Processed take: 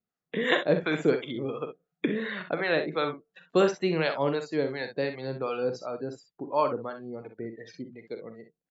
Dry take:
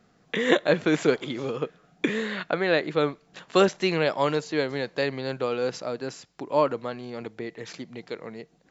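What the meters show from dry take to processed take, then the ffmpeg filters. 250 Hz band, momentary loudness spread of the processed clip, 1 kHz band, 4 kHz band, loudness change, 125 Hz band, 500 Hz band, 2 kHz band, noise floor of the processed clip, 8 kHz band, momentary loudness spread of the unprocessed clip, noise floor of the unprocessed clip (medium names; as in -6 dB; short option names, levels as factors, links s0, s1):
-3.0 dB, 16 LU, -2.5 dB, -4.0 dB, -3.0 dB, -2.0 dB, -2.5 dB, -2.5 dB, under -85 dBFS, no reading, 15 LU, -62 dBFS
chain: -filter_complex "[0:a]afftdn=nr=27:nf=-38,acrossover=split=640[s0][s1];[s0]aeval=exprs='val(0)*(1-0.7/2+0.7/2*cos(2*PI*2.8*n/s))':c=same[s2];[s1]aeval=exprs='val(0)*(1-0.7/2-0.7/2*cos(2*PI*2.8*n/s))':c=same[s3];[s2][s3]amix=inputs=2:normalize=0,aecho=1:1:44|62:0.266|0.316"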